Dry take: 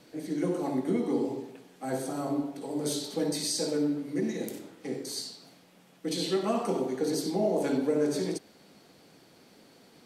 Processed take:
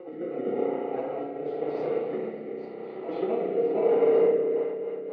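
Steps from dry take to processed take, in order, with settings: on a send: reverse echo 516 ms -12.5 dB; on the sum: plain phase-vocoder stretch 0.51×; in parallel at -5 dB: sample-and-hold 27×; on the sum: cabinet simulation 260–2300 Hz, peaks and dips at 280 Hz -7 dB, 470 Hz +7 dB, 770 Hz +7 dB, 1.1 kHz -6 dB, 1.7 kHz -5 dB; spring tank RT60 3.9 s, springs 32/53 ms, chirp 50 ms, DRR -2.5 dB; rotary cabinet horn 0.9 Hz, later 5 Hz, at 4.12 s

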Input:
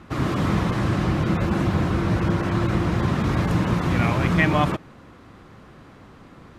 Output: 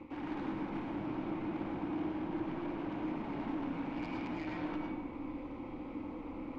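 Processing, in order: high-pass 77 Hz; reverse; compression, threshold -31 dBFS, peak gain reduction 15.5 dB; reverse; peak limiter -29.5 dBFS, peak gain reduction 10.5 dB; vowel filter u; feedback comb 250 Hz, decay 1.1 s, mix 80%; AM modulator 220 Hz, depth 55%; in parallel at -8.5 dB: sine folder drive 18 dB, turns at -44.5 dBFS; on the sum: algorithmic reverb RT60 1.2 s, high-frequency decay 0.3×, pre-delay 65 ms, DRR -1.5 dB; trim +12 dB

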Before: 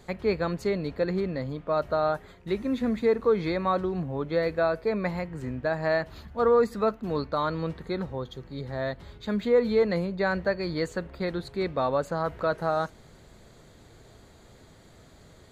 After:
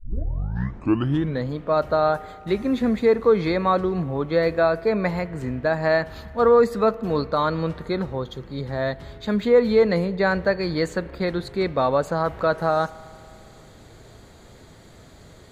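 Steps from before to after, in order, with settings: tape start-up on the opening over 1.47 s; spring tank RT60 2.7 s, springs 36 ms, chirp 60 ms, DRR 19 dB; trim +5.5 dB

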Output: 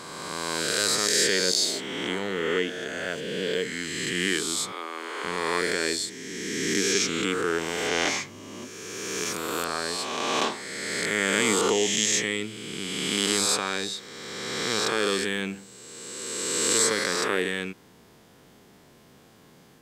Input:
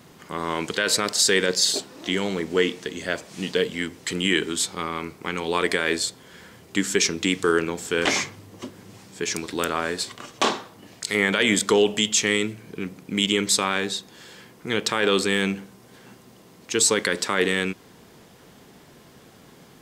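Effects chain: reverse spectral sustain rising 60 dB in 2.32 s; 4.72–5.24 s: steep high-pass 290 Hz 36 dB/octave; trim -8 dB

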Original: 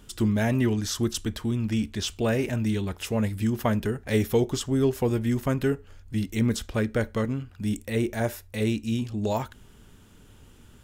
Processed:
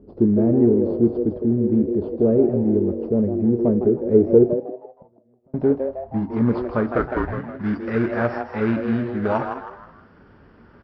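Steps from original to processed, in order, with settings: knee-point frequency compression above 4 kHz 4:1; 4.49–5.54 s: inverted gate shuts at -22 dBFS, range -42 dB; 6.98–7.38 s: frequency shift -150 Hz; in parallel at -4.5 dB: sample-rate reducer 1.9 kHz, jitter 20%; on the sum: high-pass 120 Hz 6 dB/octave; frequency-shifting echo 158 ms, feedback 36%, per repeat +130 Hz, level -8 dB; on a send at -16 dB: reverberation RT60 0.30 s, pre-delay 3 ms; on the sum: low-pass sweep 420 Hz -> 1.5 kHz, 4.63–7.30 s; trim +1 dB

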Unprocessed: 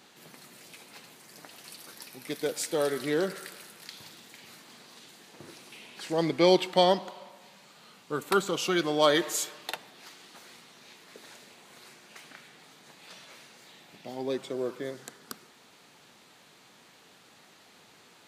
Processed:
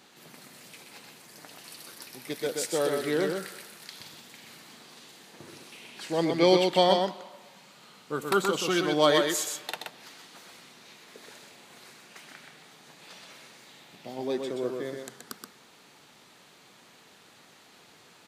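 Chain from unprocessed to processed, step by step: delay 126 ms -4.5 dB

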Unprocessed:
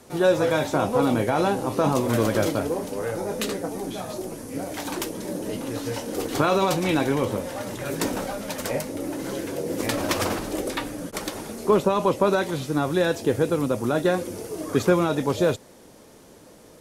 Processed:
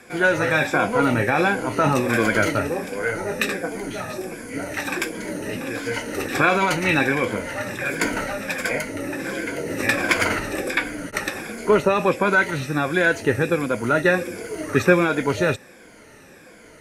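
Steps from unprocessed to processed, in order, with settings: drifting ripple filter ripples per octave 1.8, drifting -1.4 Hz, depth 10 dB; low-pass 12 kHz 12 dB/octave; high-order bell 1.9 kHz +11 dB 1.1 oct

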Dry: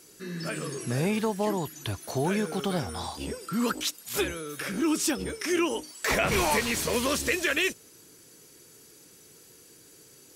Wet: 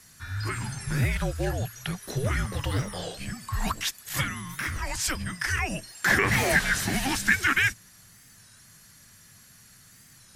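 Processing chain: graphic EQ with 31 bands 160 Hz +7 dB, 315 Hz -11 dB, 2 kHz +11 dB; frequency shift -270 Hz; warped record 33 1/3 rpm, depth 160 cents

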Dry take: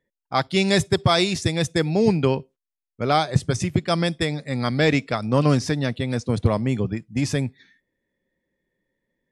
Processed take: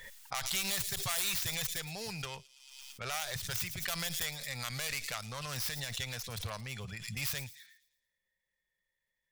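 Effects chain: tracing distortion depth 0.37 ms; bass shelf 260 Hz -5 dB; peak limiter -17 dBFS, peak gain reduction 10.5 dB; amplifier tone stack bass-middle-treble 10-0-10; feedback echo behind a high-pass 112 ms, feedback 43%, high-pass 4.1 kHz, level -12 dB; swell ahead of each attack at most 44 dB/s

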